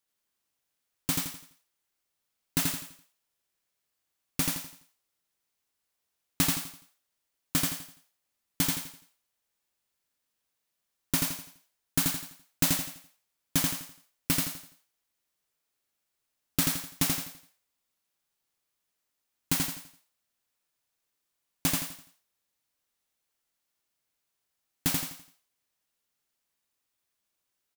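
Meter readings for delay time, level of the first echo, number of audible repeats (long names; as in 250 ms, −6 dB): 84 ms, −3.0 dB, 4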